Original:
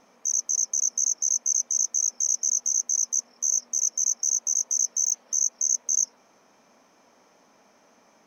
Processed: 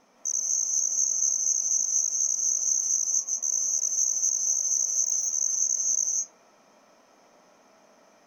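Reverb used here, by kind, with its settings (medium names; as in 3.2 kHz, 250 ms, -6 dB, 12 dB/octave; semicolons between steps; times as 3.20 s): algorithmic reverb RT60 0.51 s, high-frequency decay 0.4×, pre-delay 120 ms, DRR -1.5 dB; trim -3 dB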